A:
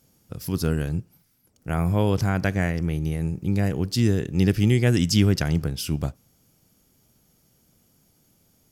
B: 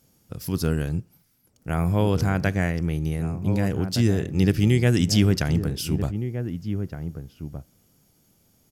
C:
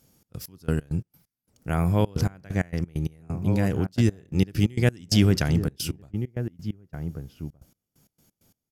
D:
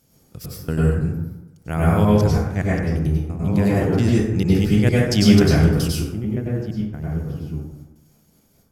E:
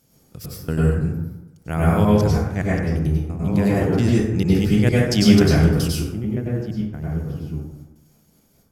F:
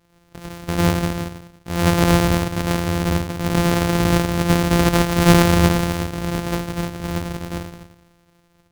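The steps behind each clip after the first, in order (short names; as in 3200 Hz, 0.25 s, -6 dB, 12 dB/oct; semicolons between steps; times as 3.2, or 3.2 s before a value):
outdoor echo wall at 260 m, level -9 dB
step gate "xx.x..x.x.x..xxx" 132 bpm -24 dB
plate-style reverb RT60 0.95 s, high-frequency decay 0.45×, pre-delay 85 ms, DRR -6 dB
notches 50/100 Hz
sample sorter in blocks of 256 samples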